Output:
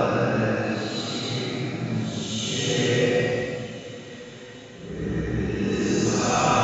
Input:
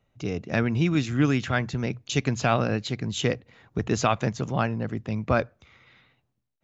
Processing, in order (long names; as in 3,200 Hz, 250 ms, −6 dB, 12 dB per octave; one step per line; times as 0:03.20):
coupled-rooms reverb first 0.33 s, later 2.8 s, from −19 dB, DRR −0.5 dB
extreme stretch with random phases 4.5×, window 0.25 s, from 0:02.62
downsampling to 22,050 Hz